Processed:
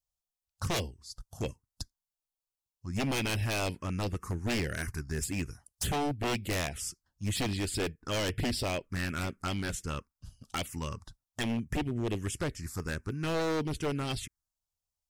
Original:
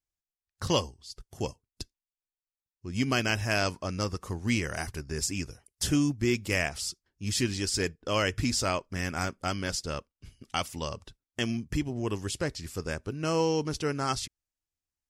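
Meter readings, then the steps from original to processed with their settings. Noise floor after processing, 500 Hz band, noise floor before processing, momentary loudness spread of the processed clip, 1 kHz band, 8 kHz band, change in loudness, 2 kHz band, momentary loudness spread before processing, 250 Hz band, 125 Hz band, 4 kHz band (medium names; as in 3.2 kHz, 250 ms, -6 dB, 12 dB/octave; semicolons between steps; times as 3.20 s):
under -85 dBFS, -3.5 dB, under -85 dBFS, 10 LU, -3.5 dB, -4.5 dB, -3.5 dB, -4.0 dB, 12 LU, -3.5 dB, -1.0 dB, -4.0 dB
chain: touch-sensitive phaser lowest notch 310 Hz, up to 1.2 kHz, full sweep at -25.5 dBFS; wavefolder -27 dBFS; trim +2 dB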